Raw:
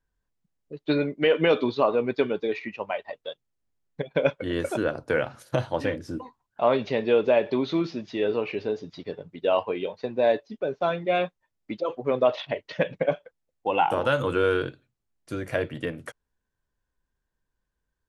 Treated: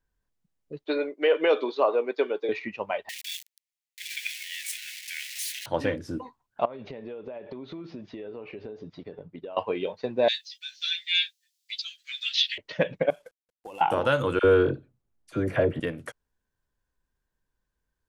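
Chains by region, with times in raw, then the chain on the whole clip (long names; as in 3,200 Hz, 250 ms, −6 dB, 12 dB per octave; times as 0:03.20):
0:00.84–0:02.49: high-pass filter 350 Hz 24 dB per octave + parametric band 4,000 Hz −3.5 dB 2.7 octaves
0:03.09–0:05.66: converter with a step at zero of −26 dBFS + Butterworth high-pass 1,900 Hz 72 dB per octave
0:06.65–0:09.57: downward compressor 20 to 1, threshold −34 dBFS + low-pass filter 1,600 Hz 6 dB per octave
0:10.28–0:12.58: Butterworth high-pass 1,600 Hz 72 dB per octave + high shelf with overshoot 2,700 Hz +14 dB, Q 1.5 + double-tracking delay 13 ms −3 dB
0:13.10–0:13.81: variable-slope delta modulation 64 kbit/s + high-shelf EQ 7,400 Hz +4.5 dB + downward compressor 10 to 1, threshold −38 dBFS
0:14.39–0:15.80: tilt shelving filter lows +5.5 dB, about 1,500 Hz + all-pass dispersion lows, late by 51 ms, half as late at 1,100 Hz
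whole clip: no processing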